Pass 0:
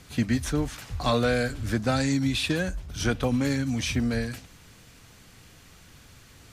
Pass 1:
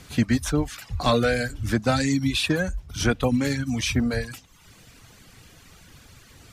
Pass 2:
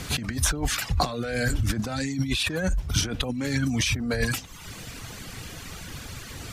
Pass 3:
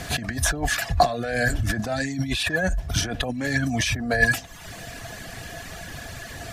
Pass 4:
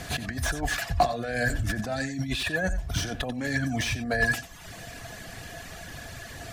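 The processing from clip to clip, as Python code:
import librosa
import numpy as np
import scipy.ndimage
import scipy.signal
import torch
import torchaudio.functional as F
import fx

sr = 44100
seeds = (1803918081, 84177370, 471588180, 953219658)

y1 = fx.dereverb_blind(x, sr, rt60_s=0.8)
y1 = y1 * librosa.db_to_amplitude(4.0)
y2 = fx.over_compress(y1, sr, threshold_db=-31.0, ratio=-1.0)
y2 = y2 * librosa.db_to_amplitude(4.5)
y3 = fx.small_body(y2, sr, hz=(680.0, 1700.0), ring_ms=45, db=16)
y4 = y3 + 10.0 ** (-14.5 / 20.0) * np.pad(y3, (int(90 * sr / 1000.0), 0))[:len(y3)]
y4 = fx.slew_limit(y4, sr, full_power_hz=280.0)
y4 = y4 * librosa.db_to_amplitude(-4.0)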